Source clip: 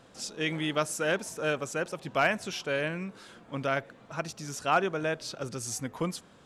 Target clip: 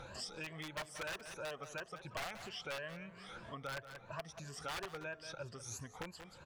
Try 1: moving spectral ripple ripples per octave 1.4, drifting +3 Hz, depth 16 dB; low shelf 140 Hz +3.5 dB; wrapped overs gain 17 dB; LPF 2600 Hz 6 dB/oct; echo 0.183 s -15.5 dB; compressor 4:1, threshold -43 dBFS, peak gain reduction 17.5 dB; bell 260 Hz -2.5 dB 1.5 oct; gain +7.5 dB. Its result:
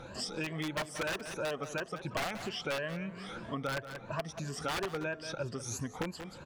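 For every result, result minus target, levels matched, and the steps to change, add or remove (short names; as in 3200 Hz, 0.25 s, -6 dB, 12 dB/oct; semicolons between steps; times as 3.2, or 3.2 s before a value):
compressor: peak gain reduction -6.5 dB; 250 Hz band +5.0 dB
change: compressor 4:1, threshold -51.5 dBFS, peak gain reduction 24 dB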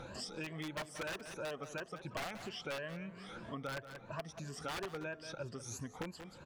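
250 Hz band +5.0 dB
change: bell 260 Hz -11 dB 1.5 oct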